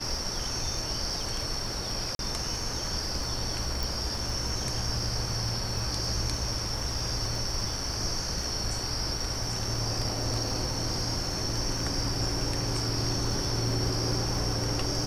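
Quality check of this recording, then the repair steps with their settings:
crackle 36/s -36 dBFS
2.15–2.19 gap 42 ms
3.83 pop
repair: de-click; interpolate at 2.15, 42 ms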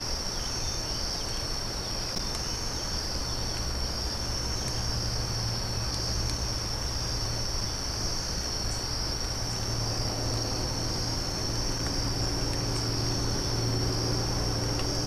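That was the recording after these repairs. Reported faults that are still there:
none

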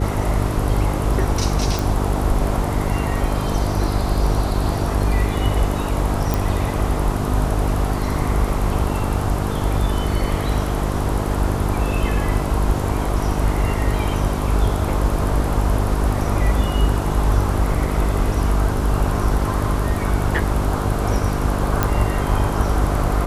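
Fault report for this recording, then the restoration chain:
buzz 50 Hz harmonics 9 -23 dBFS
1.79 pop
6.34 pop
21.83 pop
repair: de-click; de-hum 50 Hz, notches 9

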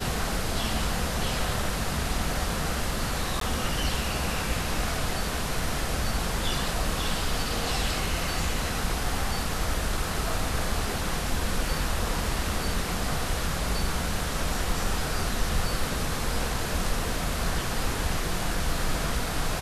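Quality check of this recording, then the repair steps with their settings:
3.4–3.41 gap 13 ms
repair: interpolate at 3.4, 13 ms

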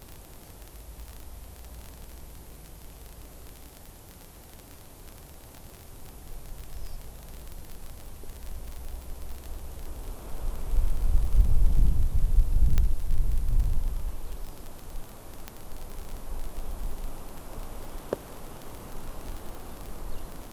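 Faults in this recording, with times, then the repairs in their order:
crackle 29/s -31 dBFS
12.78 pop -12 dBFS
15.48 pop -18 dBFS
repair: de-click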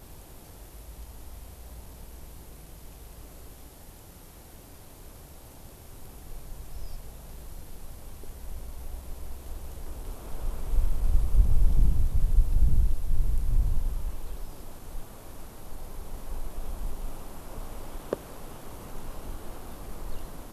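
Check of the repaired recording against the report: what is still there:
15.48 pop

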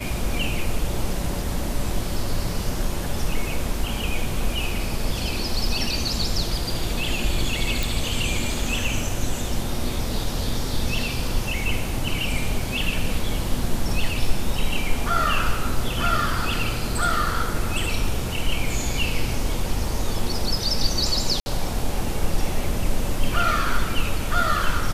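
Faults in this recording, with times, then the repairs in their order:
7.83 pop
21.4–21.46 gap 60 ms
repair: de-click; interpolate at 21.4, 60 ms

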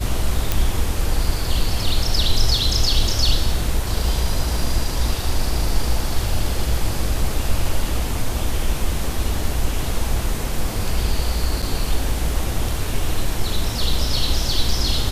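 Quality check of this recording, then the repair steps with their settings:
0.52 pop
11.62–11.63 gap 6 ms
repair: de-click; interpolate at 11.62, 6 ms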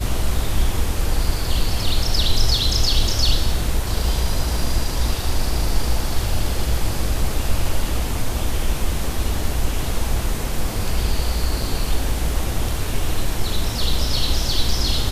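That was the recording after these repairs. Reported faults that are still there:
none

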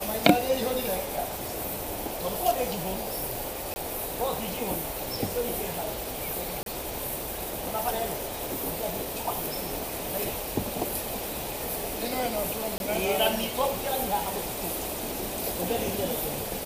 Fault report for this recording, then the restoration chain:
3.74–3.76 gap 20 ms
6.63–6.66 gap 32 ms
12.78–12.8 gap 21 ms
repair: interpolate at 3.74, 20 ms; interpolate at 6.63, 32 ms; interpolate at 12.78, 21 ms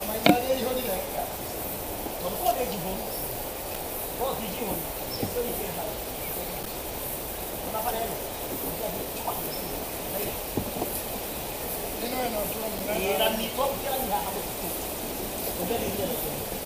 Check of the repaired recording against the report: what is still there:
none

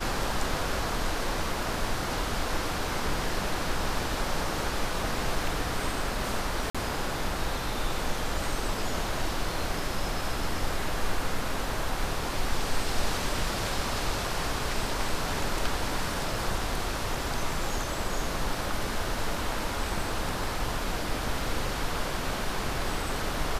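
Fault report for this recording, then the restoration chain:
6.7–6.75 gap 46 ms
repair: interpolate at 6.7, 46 ms

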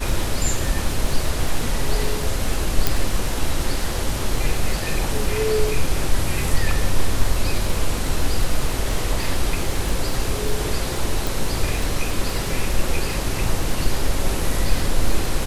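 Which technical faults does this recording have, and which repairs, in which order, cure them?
crackle 37/s -25 dBFS
2.87 pop
11.27 pop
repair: de-click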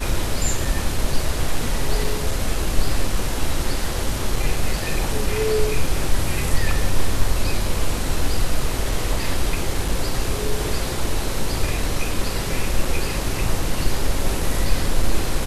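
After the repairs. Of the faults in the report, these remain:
none

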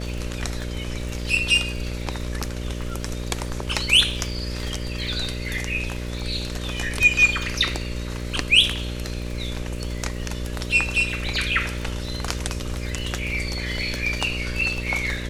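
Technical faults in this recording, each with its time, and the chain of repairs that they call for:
buzz 60 Hz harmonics 10 -30 dBFS
crackle 25/s -30 dBFS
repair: de-click; de-hum 60 Hz, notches 10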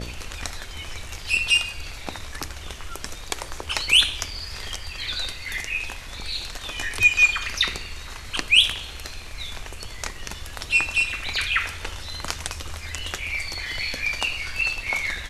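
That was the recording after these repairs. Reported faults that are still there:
none

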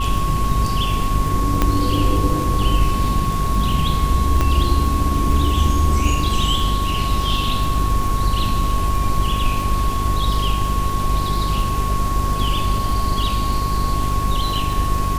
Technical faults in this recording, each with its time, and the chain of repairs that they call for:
crackle 58/s -25 dBFS
hum 50 Hz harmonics 8 -23 dBFS
tone 1100 Hz -23 dBFS
1.62 pop -3 dBFS
4.41 pop -6 dBFS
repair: de-click; notch 1100 Hz, Q 30; de-hum 50 Hz, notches 8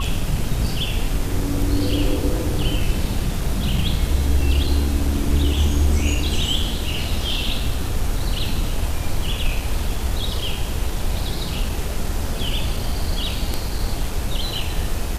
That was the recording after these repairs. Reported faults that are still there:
1.62 pop
4.41 pop

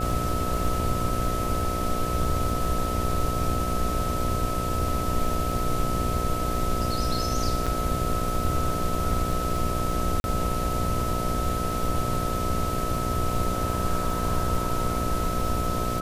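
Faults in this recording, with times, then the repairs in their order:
buzz 60 Hz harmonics 12 -31 dBFS
crackle 52/s -33 dBFS
tone 1300 Hz -30 dBFS
7.66–7.67 gap 5.9 ms
10.2–10.24 gap 41 ms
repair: de-click; de-hum 60 Hz, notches 12; notch 1300 Hz, Q 30; interpolate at 7.66, 5.9 ms; interpolate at 10.2, 41 ms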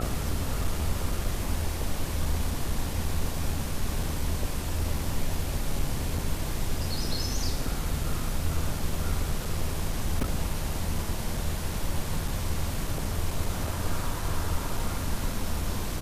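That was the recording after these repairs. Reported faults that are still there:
none

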